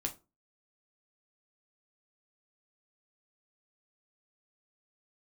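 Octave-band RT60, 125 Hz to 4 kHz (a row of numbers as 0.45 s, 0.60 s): 0.35 s, 0.35 s, 0.30 s, 0.25 s, 0.20 s, 0.20 s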